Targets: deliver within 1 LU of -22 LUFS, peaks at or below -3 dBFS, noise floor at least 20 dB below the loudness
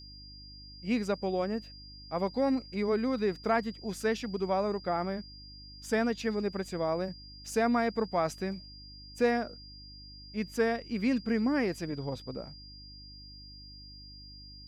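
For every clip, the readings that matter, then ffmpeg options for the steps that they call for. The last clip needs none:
hum 50 Hz; highest harmonic 300 Hz; hum level -50 dBFS; steady tone 4.8 kHz; tone level -49 dBFS; loudness -31.5 LUFS; peak level -15.5 dBFS; loudness target -22.0 LUFS
-> -af "bandreject=f=50:t=h:w=4,bandreject=f=100:t=h:w=4,bandreject=f=150:t=h:w=4,bandreject=f=200:t=h:w=4,bandreject=f=250:t=h:w=4,bandreject=f=300:t=h:w=4"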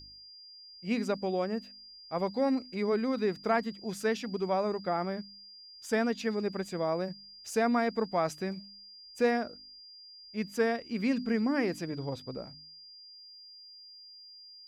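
hum not found; steady tone 4.8 kHz; tone level -49 dBFS
-> -af "bandreject=f=4800:w=30"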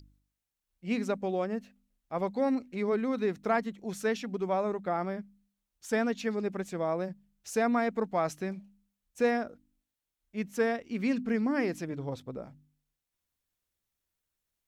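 steady tone not found; loudness -32.0 LUFS; peak level -16.0 dBFS; loudness target -22.0 LUFS
-> -af "volume=3.16"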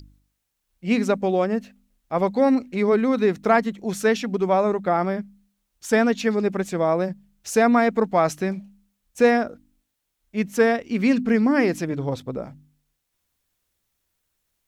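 loudness -22.0 LUFS; peak level -6.0 dBFS; noise floor -78 dBFS

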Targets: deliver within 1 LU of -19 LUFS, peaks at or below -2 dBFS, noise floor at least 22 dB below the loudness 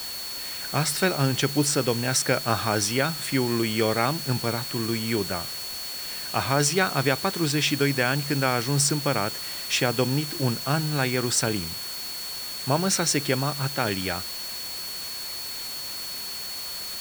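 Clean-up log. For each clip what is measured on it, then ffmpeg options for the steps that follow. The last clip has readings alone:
steady tone 4.4 kHz; tone level -34 dBFS; noise floor -34 dBFS; noise floor target -47 dBFS; loudness -25.0 LUFS; peak level -6.5 dBFS; loudness target -19.0 LUFS
-> -af "bandreject=f=4400:w=30"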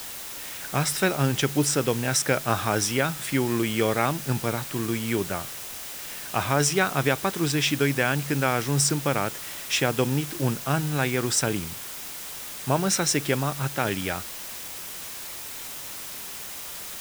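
steady tone not found; noise floor -37 dBFS; noise floor target -48 dBFS
-> -af "afftdn=nr=11:nf=-37"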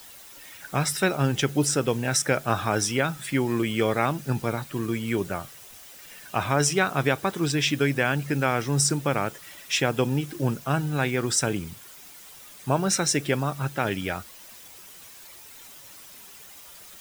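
noise floor -47 dBFS; noise floor target -48 dBFS
-> -af "afftdn=nr=6:nf=-47"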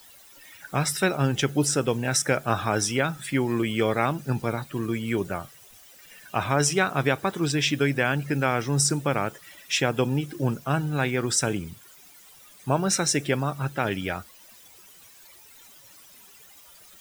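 noise floor -51 dBFS; loudness -25.5 LUFS; peak level -6.5 dBFS; loudness target -19.0 LUFS
-> -af "volume=2.11,alimiter=limit=0.794:level=0:latency=1"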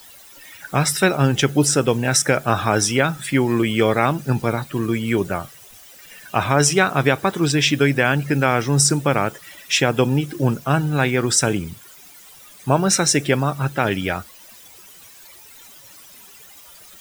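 loudness -19.0 LUFS; peak level -2.0 dBFS; noise floor -45 dBFS

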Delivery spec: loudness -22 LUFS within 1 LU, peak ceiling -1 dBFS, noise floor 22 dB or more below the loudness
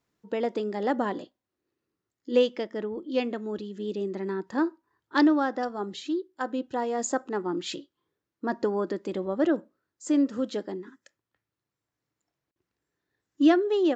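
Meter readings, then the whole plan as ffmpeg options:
loudness -28.0 LUFS; peak level -10.0 dBFS; loudness target -22.0 LUFS
-> -af "volume=2"

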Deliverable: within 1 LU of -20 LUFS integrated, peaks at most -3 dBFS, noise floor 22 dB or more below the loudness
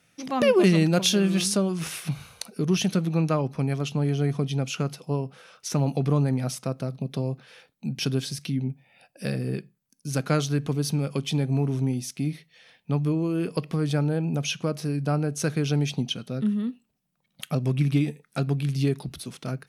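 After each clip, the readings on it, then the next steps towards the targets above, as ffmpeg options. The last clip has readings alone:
loudness -26.5 LUFS; peak level -8.5 dBFS; loudness target -20.0 LUFS
-> -af "volume=2.11,alimiter=limit=0.708:level=0:latency=1"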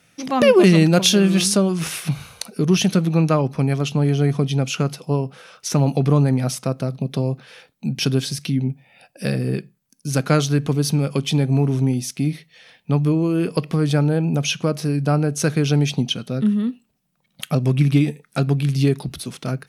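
loudness -20.0 LUFS; peak level -3.0 dBFS; noise floor -67 dBFS

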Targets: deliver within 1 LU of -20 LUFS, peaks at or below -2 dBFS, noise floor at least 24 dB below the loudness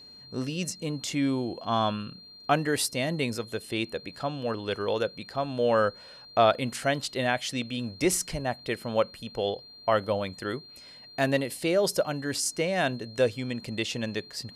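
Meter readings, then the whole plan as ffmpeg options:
steady tone 4.2 kHz; tone level -47 dBFS; loudness -28.5 LUFS; peak level -9.0 dBFS; loudness target -20.0 LUFS
-> -af "bandreject=f=4200:w=30"
-af "volume=2.66,alimiter=limit=0.794:level=0:latency=1"

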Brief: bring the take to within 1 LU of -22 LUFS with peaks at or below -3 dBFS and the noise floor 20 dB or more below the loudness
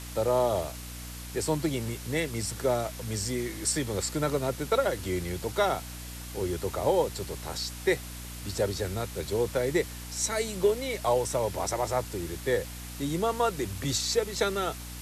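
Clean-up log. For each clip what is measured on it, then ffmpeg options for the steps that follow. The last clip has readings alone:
hum 60 Hz; highest harmonic 300 Hz; hum level -40 dBFS; noise floor -41 dBFS; noise floor target -50 dBFS; loudness -29.5 LUFS; peak level -14.0 dBFS; loudness target -22.0 LUFS
-> -af "bandreject=f=60:t=h:w=4,bandreject=f=120:t=h:w=4,bandreject=f=180:t=h:w=4,bandreject=f=240:t=h:w=4,bandreject=f=300:t=h:w=4"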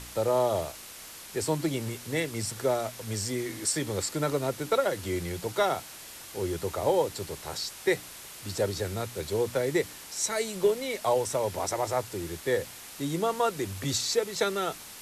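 hum not found; noise floor -45 dBFS; noise floor target -50 dBFS
-> -af "afftdn=nr=6:nf=-45"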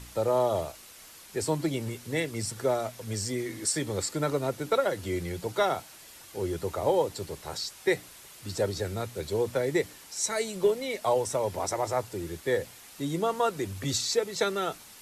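noise floor -50 dBFS; loudness -30.0 LUFS; peak level -14.5 dBFS; loudness target -22.0 LUFS
-> -af "volume=2.51"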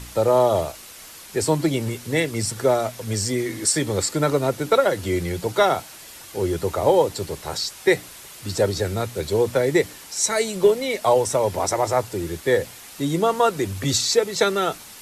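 loudness -22.0 LUFS; peak level -6.5 dBFS; noise floor -42 dBFS

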